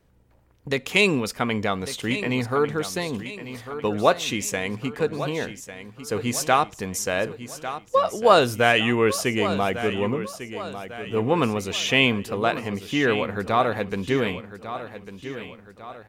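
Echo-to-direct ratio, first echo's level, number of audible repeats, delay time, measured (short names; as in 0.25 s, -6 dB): -11.0 dB, -12.0 dB, 3, 1.149 s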